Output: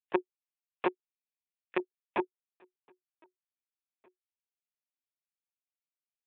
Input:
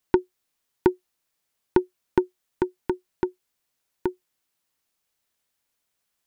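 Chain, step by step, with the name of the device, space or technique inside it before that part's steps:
noise reduction from a noise print of the clip's start 29 dB
0:00.87–0:01.77: graphic EQ with 10 bands 125 Hz −12 dB, 250 Hz −6 dB, 500 Hz −12 dB, 1,000 Hz −9 dB, 2,000 Hz +5 dB
talking toy (linear-prediction vocoder at 8 kHz pitch kept; high-pass filter 550 Hz 12 dB per octave; parametric band 2,500 Hz +11 dB 0.6 octaves)

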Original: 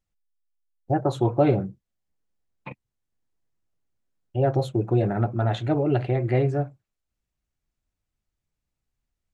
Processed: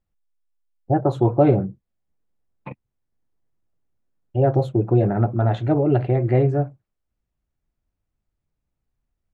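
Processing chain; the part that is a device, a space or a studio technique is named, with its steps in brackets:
through cloth (high-shelf EQ 2,200 Hz −13 dB)
level +4.5 dB

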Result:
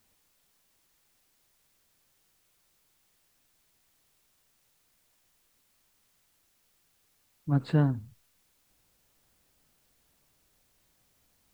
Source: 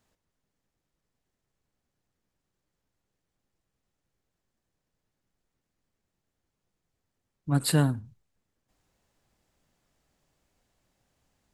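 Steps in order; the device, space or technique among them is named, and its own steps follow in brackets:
cassette deck with a dirty head (head-to-tape spacing loss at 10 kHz 38 dB; tape wow and flutter; white noise bed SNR 32 dB)

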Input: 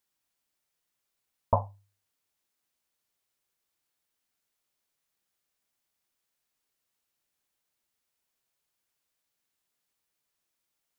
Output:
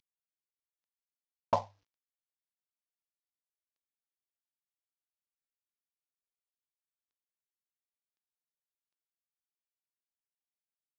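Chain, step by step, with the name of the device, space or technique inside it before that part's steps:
early wireless headset (high-pass filter 190 Hz 12 dB per octave; variable-slope delta modulation 32 kbit/s)
level −2 dB

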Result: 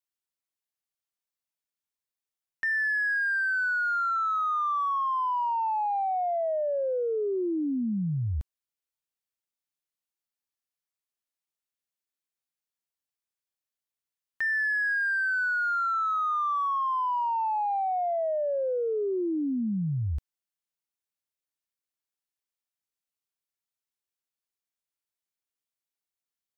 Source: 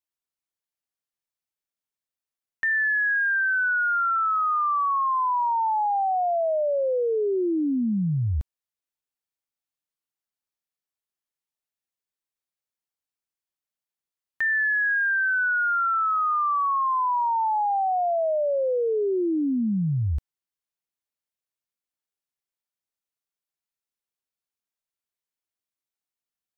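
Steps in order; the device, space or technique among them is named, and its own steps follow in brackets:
exciter from parts (in parallel at −6.5 dB: high-pass filter 2,200 Hz 6 dB per octave + soft clipping −34.5 dBFS, distortion −10 dB)
on the sum: level −4.5 dB

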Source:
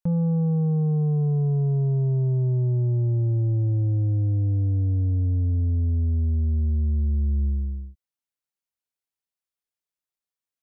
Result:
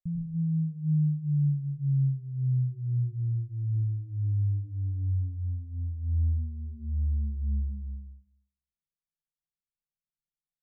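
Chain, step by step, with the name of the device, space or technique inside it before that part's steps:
comb filter 5.7 ms, depth 71%
club heard from the street (brickwall limiter −26 dBFS, peak gain reduction 11 dB; low-pass filter 170 Hz 24 dB per octave; convolution reverb RT60 0.60 s, pre-delay 93 ms, DRR −1 dB)

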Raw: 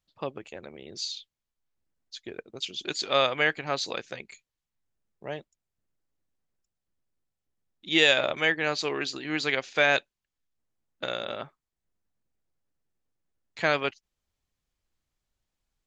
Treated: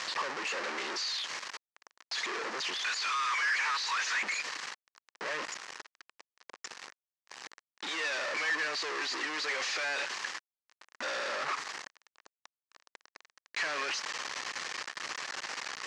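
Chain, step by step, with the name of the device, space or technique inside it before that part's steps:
0:02.76–0:04.23: Butterworth high-pass 920 Hz 96 dB per octave
home computer beeper (sign of each sample alone; loudspeaker in its box 610–6,000 Hz, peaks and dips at 660 Hz −5 dB, 1,100 Hz +4 dB, 1,800 Hz +6 dB, 3,500 Hz −5 dB)
level +1 dB

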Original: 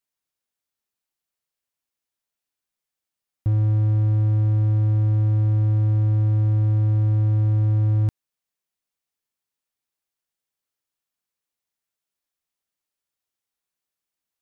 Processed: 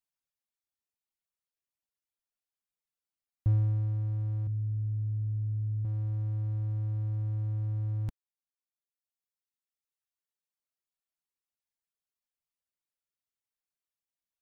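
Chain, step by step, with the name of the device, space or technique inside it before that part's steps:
reverb reduction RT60 2 s
0:04.47–0:05.85: drawn EQ curve 110 Hz 0 dB, 640 Hz −16 dB, 910 Hz −30 dB, 1,900 Hz −15 dB
low shelf boost with a cut just above (low-shelf EQ 100 Hz +5.5 dB; parametric band 330 Hz −2.5 dB)
level −7 dB

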